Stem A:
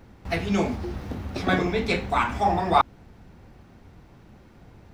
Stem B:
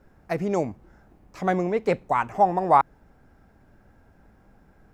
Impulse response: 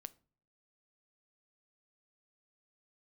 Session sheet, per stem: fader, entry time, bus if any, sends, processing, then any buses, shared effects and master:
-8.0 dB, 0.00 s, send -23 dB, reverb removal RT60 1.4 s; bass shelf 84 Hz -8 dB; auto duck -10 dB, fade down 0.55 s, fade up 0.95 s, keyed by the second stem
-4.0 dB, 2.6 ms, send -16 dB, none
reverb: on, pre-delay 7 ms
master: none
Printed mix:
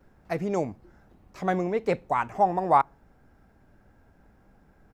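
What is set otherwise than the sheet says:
stem A -8.0 dB -> -17.0 dB; reverb return +7.0 dB

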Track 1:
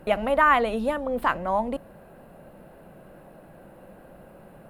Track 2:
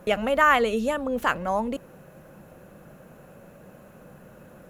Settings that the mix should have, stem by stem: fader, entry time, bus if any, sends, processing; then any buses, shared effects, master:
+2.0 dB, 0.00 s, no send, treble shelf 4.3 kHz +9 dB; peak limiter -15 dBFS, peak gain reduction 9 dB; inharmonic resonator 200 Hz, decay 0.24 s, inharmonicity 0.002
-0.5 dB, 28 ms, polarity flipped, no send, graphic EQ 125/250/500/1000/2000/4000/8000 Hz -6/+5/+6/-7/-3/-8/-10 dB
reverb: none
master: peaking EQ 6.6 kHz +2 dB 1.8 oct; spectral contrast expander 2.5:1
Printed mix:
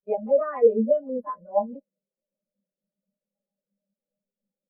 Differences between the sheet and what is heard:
stem 1 +2.0 dB -> +12.0 dB; stem 2: polarity flipped

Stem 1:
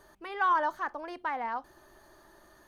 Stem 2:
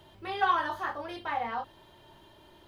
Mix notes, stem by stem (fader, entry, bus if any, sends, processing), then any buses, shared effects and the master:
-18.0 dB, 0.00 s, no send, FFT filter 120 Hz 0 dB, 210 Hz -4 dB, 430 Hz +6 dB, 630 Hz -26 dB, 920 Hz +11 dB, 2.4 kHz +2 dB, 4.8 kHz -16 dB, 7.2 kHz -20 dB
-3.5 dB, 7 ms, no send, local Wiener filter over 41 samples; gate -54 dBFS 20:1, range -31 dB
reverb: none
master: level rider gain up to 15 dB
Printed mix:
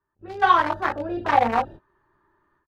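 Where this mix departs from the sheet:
stem 1 -18.0 dB -> -28.5 dB; stem 2 -3.5 dB -> +3.0 dB

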